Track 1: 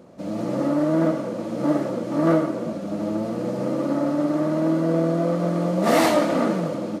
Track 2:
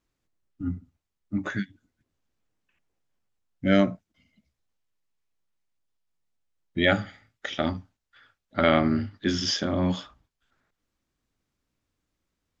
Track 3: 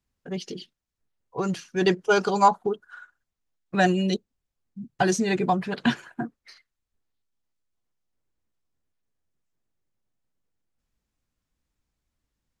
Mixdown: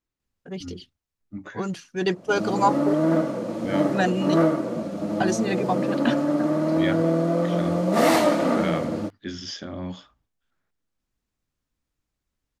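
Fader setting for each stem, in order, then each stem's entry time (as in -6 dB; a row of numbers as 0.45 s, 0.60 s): -0.5 dB, -8.0 dB, -2.5 dB; 2.10 s, 0.00 s, 0.20 s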